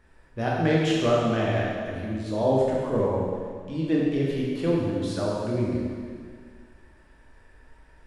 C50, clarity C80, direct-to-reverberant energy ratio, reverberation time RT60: -2.0 dB, 0.0 dB, -5.5 dB, 2.0 s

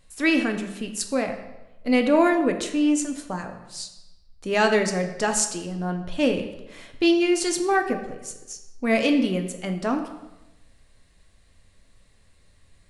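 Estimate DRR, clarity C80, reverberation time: 5.0 dB, 10.5 dB, 1.0 s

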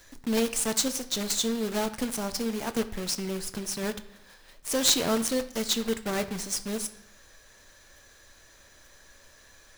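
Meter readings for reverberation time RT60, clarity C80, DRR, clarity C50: 0.70 s, 16.5 dB, 10.0 dB, 14.0 dB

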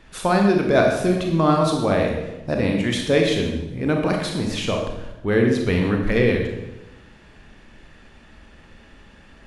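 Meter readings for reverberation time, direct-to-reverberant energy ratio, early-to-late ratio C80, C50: 1.0 s, 1.0 dB, 6.0 dB, 4.0 dB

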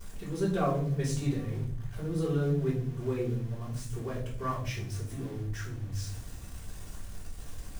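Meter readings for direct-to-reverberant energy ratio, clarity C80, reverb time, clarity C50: -7.0 dB, 11.0 dB, 0.55 s, 7.0 dB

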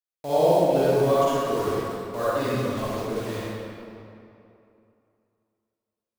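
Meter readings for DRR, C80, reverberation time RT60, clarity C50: -10.5 dB, -4.0 dB, 2.8 s, -8.5 dB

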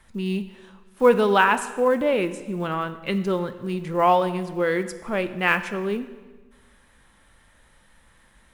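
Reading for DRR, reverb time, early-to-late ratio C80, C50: 10.5 dB, 1.3 s, 14.5 dB, 13.0 dB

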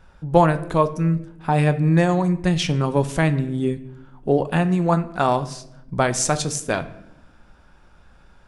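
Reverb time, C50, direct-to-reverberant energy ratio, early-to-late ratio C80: 0.85 s, 15.5 dB, 10.5 dB, 18.0 dB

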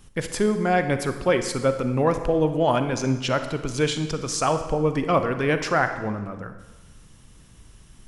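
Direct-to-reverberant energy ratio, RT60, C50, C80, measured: 8.0 dB, 1.2 s, 9.0 dB, 11.0 dB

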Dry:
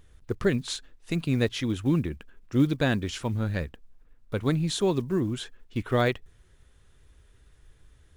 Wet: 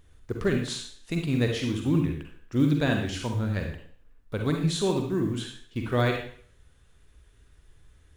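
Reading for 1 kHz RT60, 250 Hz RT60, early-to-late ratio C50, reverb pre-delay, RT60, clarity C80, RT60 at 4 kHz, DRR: 0.55 s, 0.50 s, 3.5 dB, 39 ms, 0.55 s, 9.0 dB, 0.55 s, 2.0 dB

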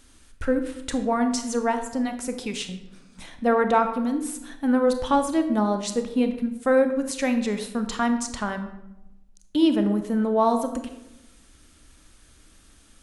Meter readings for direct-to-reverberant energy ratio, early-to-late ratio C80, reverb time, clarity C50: 7.0 dB, 11.5 dB, 0.90 s, 9.0 dB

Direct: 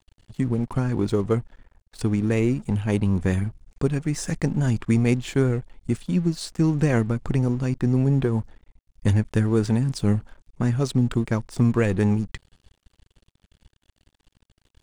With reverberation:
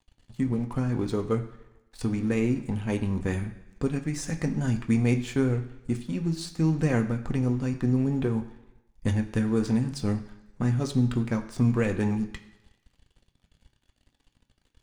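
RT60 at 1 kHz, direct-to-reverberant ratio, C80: 1.0 s, 4.0 dB, 14.5 dB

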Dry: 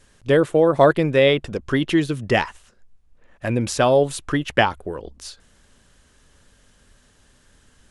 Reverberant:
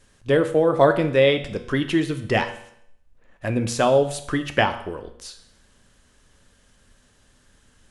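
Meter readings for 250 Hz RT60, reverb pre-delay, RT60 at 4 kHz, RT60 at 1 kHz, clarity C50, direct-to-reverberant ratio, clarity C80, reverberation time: 0.70 s, 8 ms, 0.70 s, 0.70 s, 12.0 dB, 7.5 dB, 14.5 dB, 0.70 s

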